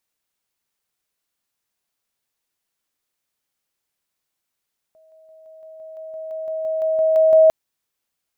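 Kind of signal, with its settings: level ladder 637 Hz -50 dBFS, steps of 3 dB, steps 15, 0.17 s 0.00 s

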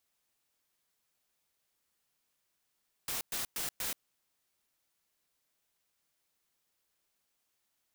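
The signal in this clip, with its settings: noise bursts white, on 0.13 s, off 0.11 s, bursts 4, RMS -36 dBFS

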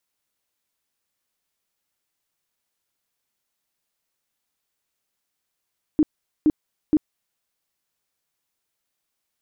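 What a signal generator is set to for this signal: tone bursts 306 Hz, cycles 12, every 0.47 s, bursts 3, -12.5 dBFS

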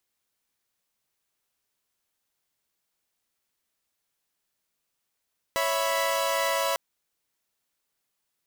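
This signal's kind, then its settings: chord C#5/E5/B5 saw, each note -26 dBFS 1.20 s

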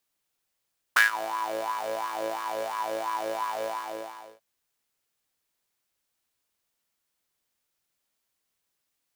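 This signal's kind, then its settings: synth patch with filter wobble A2, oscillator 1 saw, oscillator 2 square, interval +19 st, oscillator 2 level -10.5 dB, noise -19 dB, filter highpass, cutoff 680 Hz, Q 8.2, filter envelope 1 oct, filter decay 0.42 s, filter sustain 15%, attack 6.5 ms, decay 0.14 s, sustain -17.5 dB, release 0.77 s, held 2.67 s, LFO 2.9 Hz, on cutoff 0.5 oct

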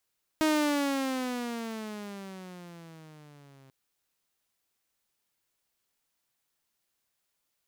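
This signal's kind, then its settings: gliding synth tone saw, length 3.29 s, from 315 Hz, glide -15 st, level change -32 dB, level -19.5 dB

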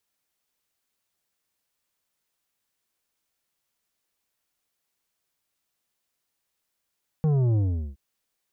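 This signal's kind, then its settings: sub drop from 160 Hz, over 0.72 s, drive 9 dB, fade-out 0.40 s, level -20 dB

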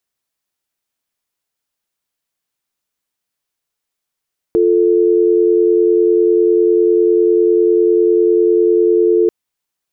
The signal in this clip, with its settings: call progress tone dial tone, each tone -11.5 dBFS 4.74 s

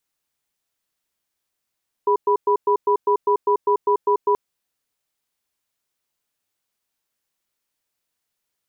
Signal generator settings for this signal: cadence 411 Hz, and 984 Hz, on 0.09 s, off 0.11 s, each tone -17 dBFS 2.28 s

